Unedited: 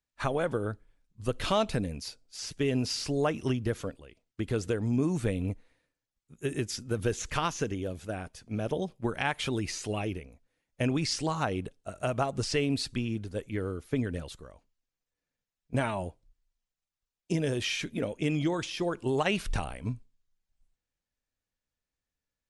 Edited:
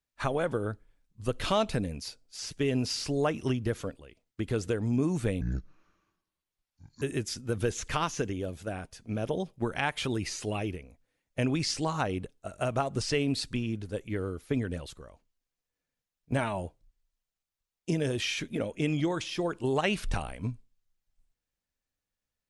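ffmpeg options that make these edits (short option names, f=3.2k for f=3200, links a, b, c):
-filter_complex "[0:a]asplit=3[a][b][c];[a]atrim=end=5.414[d];[b]atrim=start=5.41:end=6.44,asetpts=PTS-STARTPTS,asetrate=28224,aresample=44100,atrim=end_sample=70973,asetpts=PTS-STARTPTS[e];[c]atrim=start=6.436[f];[d][e]acrossfade=d=0.004:c1=hsin:c2=hsin[g];[g][f]acrossfade=d=0.004:c1=hsin:c2=hsin"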